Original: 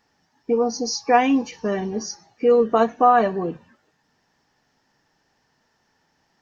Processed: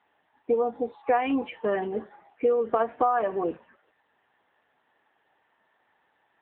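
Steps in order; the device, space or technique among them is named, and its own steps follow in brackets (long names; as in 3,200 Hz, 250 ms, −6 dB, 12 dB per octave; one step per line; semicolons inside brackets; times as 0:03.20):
voicemail (band-pass filter 390–3,200 Hz; downward compressor 10 to 1, threshold −21 dBFS, peak gain reduction 10.5 dB; level +2 dB; AMR narrowband 7.95 kbit/s 8,000 Hz)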